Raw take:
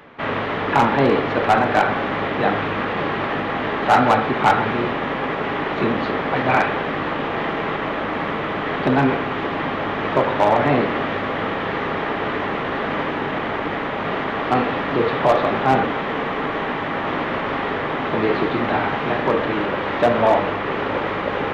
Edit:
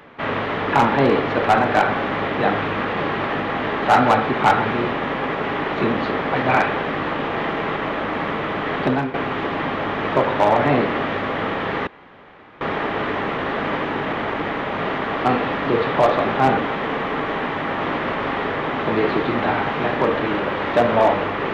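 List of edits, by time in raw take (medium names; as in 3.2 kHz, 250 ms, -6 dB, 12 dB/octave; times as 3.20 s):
8.85–9.14 s: fade out, to -15.5 dB
11.87 s: insert room tone 0.74 s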